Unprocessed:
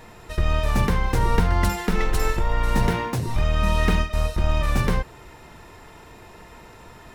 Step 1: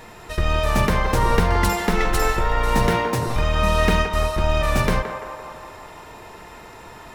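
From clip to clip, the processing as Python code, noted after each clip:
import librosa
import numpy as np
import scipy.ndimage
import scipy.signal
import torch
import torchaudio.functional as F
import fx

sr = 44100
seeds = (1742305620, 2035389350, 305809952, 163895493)

y = fx.low_shelf(x, sr, hz=250.0, db=-5.0)
y = fx.echo_banded(y, sr, ms=170, feedback_pct=73, hz=850.0, wet_db=-5.5)
y = y * librosa.db_to_amplitude(4.5)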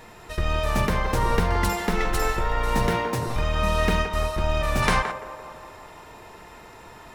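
y = fx.spec_box(x, sr, start_s=4.82, length_s=0.29, low_hz=670.0, high_hz=11000.0, gain_db=8)
y = y * librosa.db_to_amplitude(-4.0)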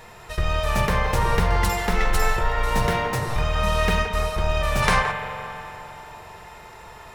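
y = fx.peak_eq(x, sr, hz=280.0, db=-10.5, octaves=0.61)
y = fx.rev_spring(y, sr, rt60_s=3.0, pass_ms=(44,), chirp_ms=75, drr_db=7.5)
y = y * librosa.db_to_amplitude(2.0)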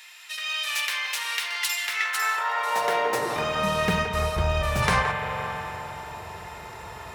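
y = fx.filter_sweep_highpass(x, sr, from_hz=2700.0, to_hz=70.0, start_s=1.8, end_s=4.35, q=1.4)
y = fx.rider(y, sr, range_db=3, speed_s=0.5)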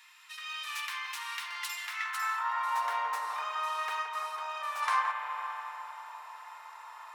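y = fx.ladder_highpass(x, sr, hz=920.0, resonance_pct=60)
y = y * librosa.db_to_amplitude(-1.5)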